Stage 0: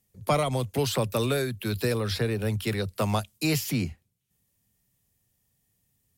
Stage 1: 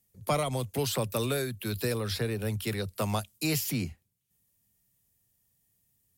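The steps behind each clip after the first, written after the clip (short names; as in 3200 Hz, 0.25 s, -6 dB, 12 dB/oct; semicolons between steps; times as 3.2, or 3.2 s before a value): high shelf 7400 Hz +7 dB; gain -4 dB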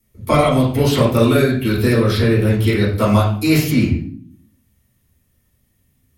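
reverb RT60 0.50 s, pre-delay 4 ms, DRR -10 dB; gain -2 dB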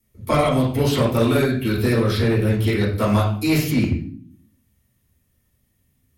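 one-sided clip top -10 dBFS; gain -3.5 dB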